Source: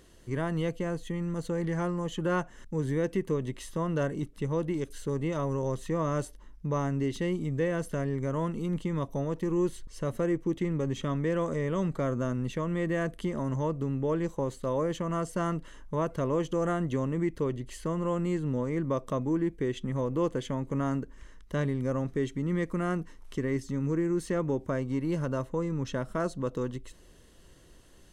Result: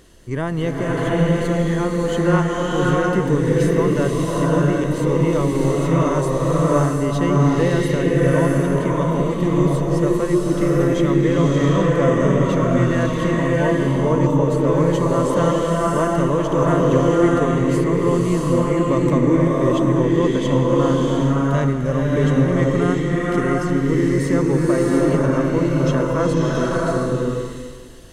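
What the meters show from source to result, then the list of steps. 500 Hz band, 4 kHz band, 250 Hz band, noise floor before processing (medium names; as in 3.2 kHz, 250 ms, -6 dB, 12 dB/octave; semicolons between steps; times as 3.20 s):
+13.0 dB, +13.5 dB, +13.0 dB, -54 dBFS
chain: swelling reverb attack 710 ms, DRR -4.5 dB; trim +7.5 dB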